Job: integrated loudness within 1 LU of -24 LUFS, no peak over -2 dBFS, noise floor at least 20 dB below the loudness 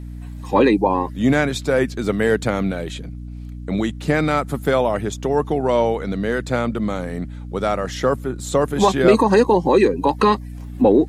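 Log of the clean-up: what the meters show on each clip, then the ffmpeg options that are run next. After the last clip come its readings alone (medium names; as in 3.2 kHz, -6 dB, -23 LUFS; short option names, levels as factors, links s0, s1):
hum 60 Hz; highest harmonic 300 Hz; hum level -29 dBFS; loudness -19.5 LUFS; peak level -1.5 dBFS; loudness target -24.0 LUFS
-> -af "bandreject=f=60:t=h:w=4,bandreject=f=120:t=h:w=4,bandreject=f=180:t=h:w=4,bandreject=f=240:t=h:w=4,bandreject=f=300:t=h:w=4"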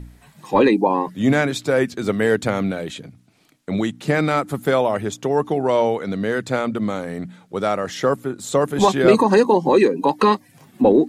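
hum not found; loudness -19.5 LUFS; peak level -1.0 dBFS; loudness target -24.0 LUFS
-> -af "volume=0.596"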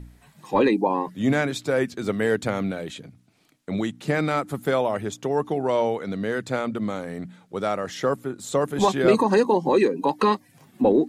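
loudness -24.0 LUFS; peak level -5.5 dBFS; noise floor -59 dBFS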